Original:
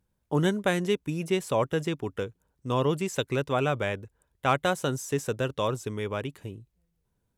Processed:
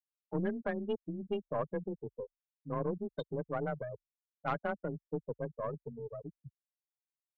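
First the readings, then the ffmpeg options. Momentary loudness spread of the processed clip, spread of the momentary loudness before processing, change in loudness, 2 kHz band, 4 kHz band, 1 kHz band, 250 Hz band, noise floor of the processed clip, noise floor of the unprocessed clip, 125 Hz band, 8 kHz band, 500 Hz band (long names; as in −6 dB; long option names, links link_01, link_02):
11 LU, 11 LU, −10.0 dB, −13.0 dB, −21.0 dB, −10.5 dB, −9.0 dB, below −85 dBFS, −77 dBFS, −11.5 dB, below −40 dB, −9.0 dB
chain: -af "afftfilt=real='re*gte(hypot(re,im),0.141)':imag='im*gte(hypot(re,im),0.141)':win_size=1024:overlap=0.75,afreqshift=24,aeval=exprs='(tanh(6.31*val(0)+0.5)-tanh(0.5))/6.31':channel_layout=same,volume=-6.5dB"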